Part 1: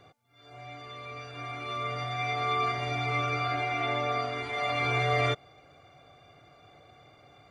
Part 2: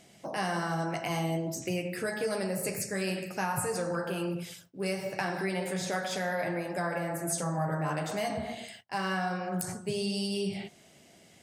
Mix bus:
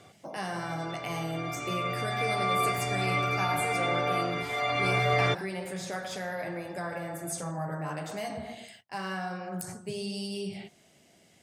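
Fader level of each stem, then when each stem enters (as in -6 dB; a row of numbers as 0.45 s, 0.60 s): +1.0 dB, -3.5 dB; 0.00 s, 0.00 s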